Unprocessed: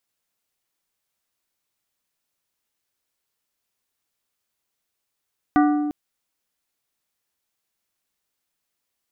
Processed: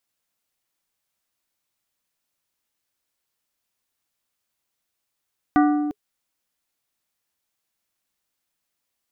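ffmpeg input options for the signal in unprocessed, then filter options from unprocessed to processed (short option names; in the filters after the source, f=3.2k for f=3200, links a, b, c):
-f lavfi -i "aevalsrc='0.224*pow(10,-3*t/1.95)*sin(2*PI*296*t)+0.133*pow(10,-3*t/1.027)*sin(2*PI*740*t)+0.0794*pow(10,-3*t/0.739)*sin(2*PI*1184*t)+0.0473*pow(10,-3*t/0.632)*sin(2*PI*1480*t)+0.0282*pow(10,-3*t/0.526)*sin(2*PI*1924*t)':d=0.35:s=44100"
-af "bandreject=f=420:w=12"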